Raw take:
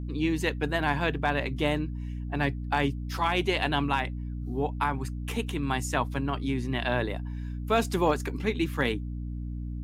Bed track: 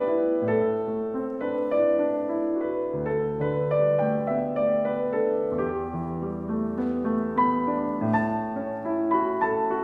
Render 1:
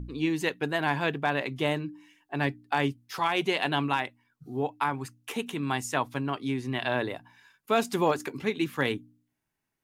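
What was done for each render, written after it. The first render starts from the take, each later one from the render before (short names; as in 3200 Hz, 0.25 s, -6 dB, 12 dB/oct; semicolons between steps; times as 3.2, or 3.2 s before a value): de-hum 60 Hz, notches 5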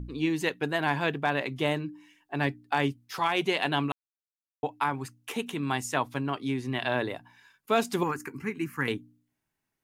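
3.92–4.63 mute; 8.03–8.88 fixed phaser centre 1500 Hz, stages 4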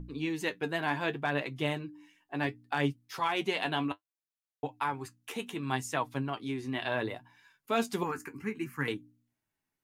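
flange 0.67 Hz, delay 5.9 ms, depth 5.8 ms, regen +48%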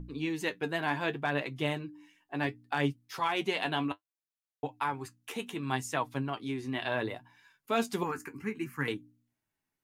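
nothing audible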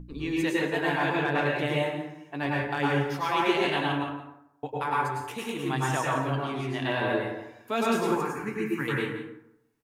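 echo 0.171 s -13 dB; plate-style reverb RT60 0.82 s, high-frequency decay 0.5×, pre-delay 90 ms, DRR -4.5 dB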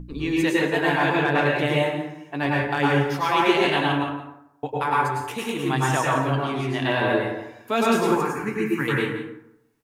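gain +5.5 dB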